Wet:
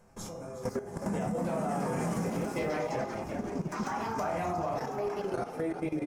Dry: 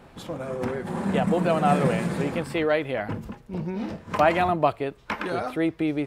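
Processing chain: shoebox room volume 540 m³, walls furnished, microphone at 5.3 m; level quantiser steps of 19 dB; on a send: frequency-shifting echo 0.363 s, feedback 52%, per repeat +52 Hz, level -13 dB; on the sum: echoes that change speed 0.541 s, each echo +4 st, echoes 3, each echo -6 dB; in parallel at +1 dB: limiter -18 dBFS, peak gain reduction 10.5 dB; on the sum: bell 3000 Hz -4 dB 0.63 oct; resonator 410 Hz, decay 0.75 s, mix 70%; compressor 2:1, threshold -34 dBFS, peak gain reduction 7.5 dB; resonant high shelf 4800 Hz +7 dB, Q 3

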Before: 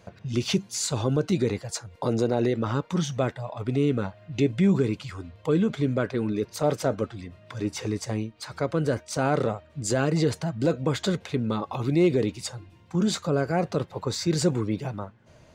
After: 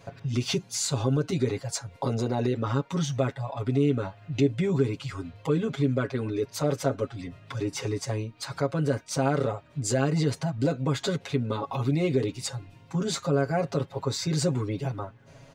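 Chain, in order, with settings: comb 7.3 ms, depth 97%; in parallel at +2.5 dB: compressor, threshold -31 dBFS, peak gain reduction 18 dB; on the sum: gain -7 dB

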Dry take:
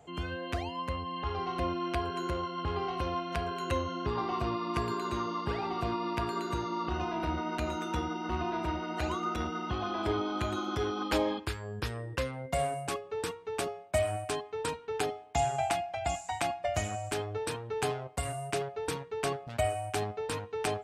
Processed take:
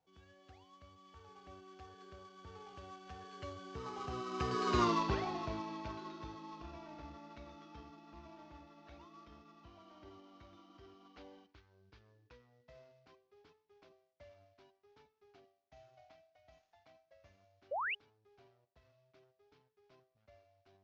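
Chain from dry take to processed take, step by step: CVSD 32 kbps; Doppler pass-by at 4.85, 26 m/s, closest 4.2 m; painted sound rise, 17.71–17.95, 500–3100 Hz -41 dBFS; gain +4 dB

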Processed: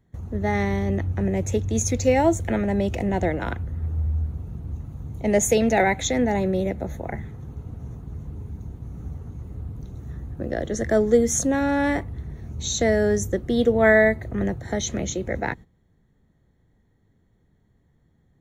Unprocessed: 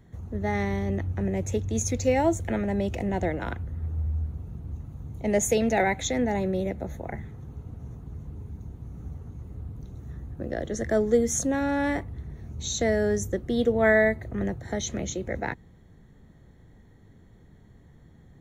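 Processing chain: gate -42 dBFS, range -14 dB; gain +4 dB

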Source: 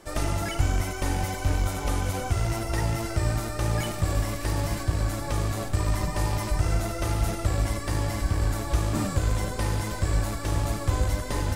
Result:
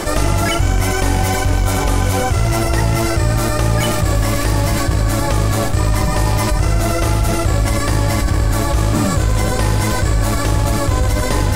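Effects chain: fast leveller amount 70%; gain +6 dB

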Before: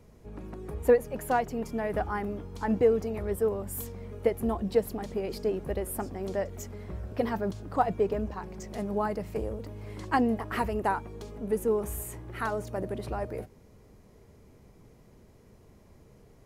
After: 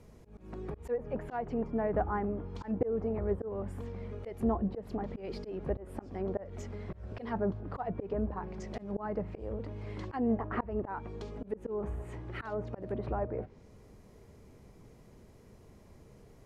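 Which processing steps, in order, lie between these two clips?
auto swell 0.207 s; treble ducked by the level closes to 1300 Hz, closed at -31 dBFS

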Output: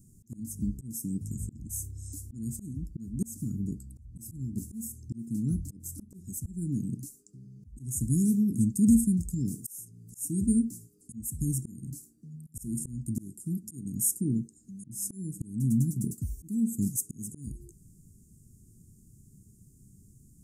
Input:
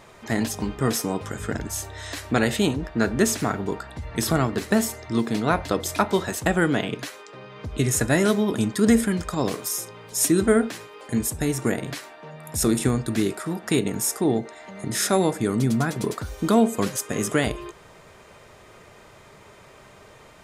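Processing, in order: inverse Chebyshev band-stop 550–3600 Hz, stop band 50 dB; auto swell 0.355 s

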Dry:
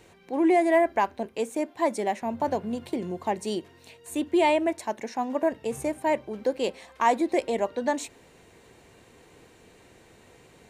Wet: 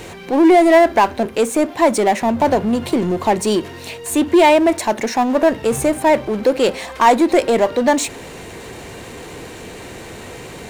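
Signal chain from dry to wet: power-law curve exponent 0.7; gain +8 dB

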